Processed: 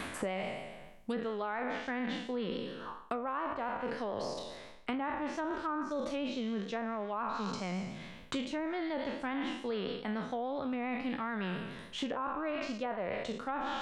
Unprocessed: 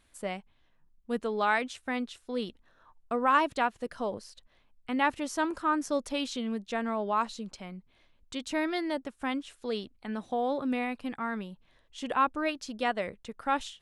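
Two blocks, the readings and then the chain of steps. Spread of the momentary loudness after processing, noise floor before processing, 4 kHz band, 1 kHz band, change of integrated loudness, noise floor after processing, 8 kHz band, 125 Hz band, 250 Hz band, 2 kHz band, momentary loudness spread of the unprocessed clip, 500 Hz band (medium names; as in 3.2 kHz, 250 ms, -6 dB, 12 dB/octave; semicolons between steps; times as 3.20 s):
4 LU, -67 dBFS, -3.5 dB, -7.0 dB, -5.5 dB, -51 dBFS, -7.0 dB, no reading, -3.0 dB, -6.0 dB, 13 LU, -3.0 dB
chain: spectral sustain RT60 0.79 s; low-pass that closes with the level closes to 1.2 kHz, closed at -24 dBFS; reverse; compression 10:1, threshold -39 dBFS, peak gain reduction 19 dB; reverse; vibrato 7.1 Hz 42 cents; three bands compressed up and down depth 100%; trim +5.5 dB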